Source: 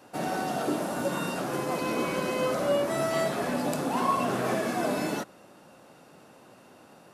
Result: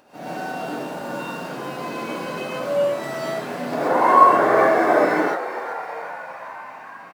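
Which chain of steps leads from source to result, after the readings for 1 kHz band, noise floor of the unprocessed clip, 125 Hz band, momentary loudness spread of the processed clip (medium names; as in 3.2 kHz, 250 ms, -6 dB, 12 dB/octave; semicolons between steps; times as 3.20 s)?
+12.0 dB, -54 dBFS, -1.0 dB, 20 LU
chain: median filter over 5 samples; time-frequency box 3.72–5.47 s, 300–2300 Hz +12 dB; bass shelf 120 Hz -6 dB; upward compressor, threshold -47 dBFS; on a send: frequency-shifting echo 394 ms, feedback 65%, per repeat +75 Hz, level -12 dB; on the sum: gated-style reverb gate 150 ms rising, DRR -7 dB; trim -6.5 dB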